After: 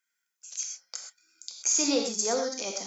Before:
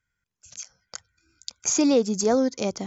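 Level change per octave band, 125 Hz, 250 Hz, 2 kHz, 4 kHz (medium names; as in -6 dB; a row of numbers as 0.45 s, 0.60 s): no reading, -10.0 dB, -1.0 dB, +2.5 dB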